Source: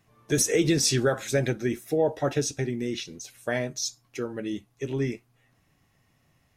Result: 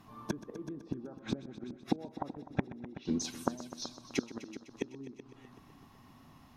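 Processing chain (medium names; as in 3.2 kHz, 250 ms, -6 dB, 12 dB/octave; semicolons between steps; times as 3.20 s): low-pass that closes with the level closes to 770 Hz, closed at -23.5 dBFS; inverted gate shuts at -25 dBFS, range -30 dB; graphic EQ 125/250/500/1000/2000/4000/8000 Hz -4/+10/-7/+11/-7/+3/-7 dB; on a send: multi-head delay 126 ms, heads all three, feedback 45%, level -17 dB; on the sum: trim +6.5 dB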